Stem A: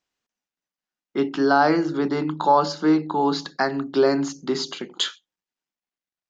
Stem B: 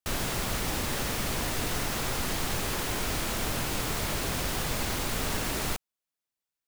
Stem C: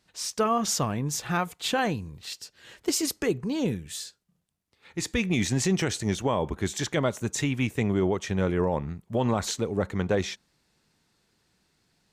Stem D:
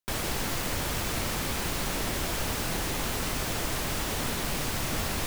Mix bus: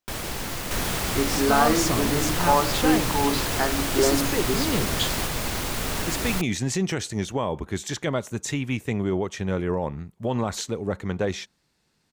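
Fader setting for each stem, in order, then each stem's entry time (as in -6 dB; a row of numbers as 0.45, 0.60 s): -3.5, +2.5, -0.5, -0.5 dB; 0.00, 0.65, 1.10, 0.00 s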